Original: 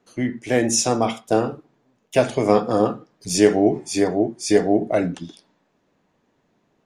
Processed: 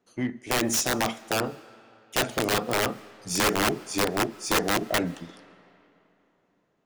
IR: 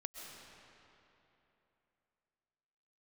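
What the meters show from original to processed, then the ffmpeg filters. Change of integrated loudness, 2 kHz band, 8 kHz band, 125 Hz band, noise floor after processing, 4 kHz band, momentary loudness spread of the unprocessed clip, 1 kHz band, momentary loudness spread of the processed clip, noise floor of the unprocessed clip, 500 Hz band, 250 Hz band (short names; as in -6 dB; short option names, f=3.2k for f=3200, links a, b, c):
-6.0 dB, +2.5 dB, -3.0 dB, -6.5 dB, -71 dBFS, +1.5 dB, 10 LU, -3.0 dB, 10 LU, -68 dBFS, -10.5 dB, -9.5 dB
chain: -filter_complex "[0:a]aeval=exprs='(mod(3.76*val(0)+1,2)-1)/3.76':c=same,aeval=exprs='0.266*(cos(1*acos(clip(val(0)/0.266,-1,1)))-cos(1*PI/2))+0.0106*(cos(7*acos(clip(val(0)/0.266,-1,1)))-cos(7*PI/2))':c=same,asplit=2[a][b];[1:a]atrim=start_sample=2205,lowshelf=f=110:g=-12[c];[b][c]afir=irnorm=-1:irlink=0,volume=-13.5dB[d];[a][d]amix=inputs=2:normalize=0,volume=-6dB"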